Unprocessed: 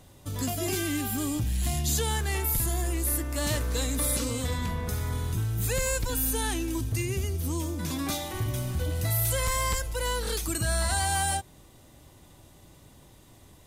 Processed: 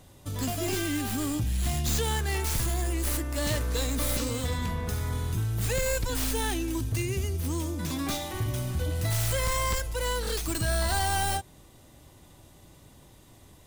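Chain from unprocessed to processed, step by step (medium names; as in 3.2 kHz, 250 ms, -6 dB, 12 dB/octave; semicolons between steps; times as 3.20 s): tracing distortion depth 0.069 ms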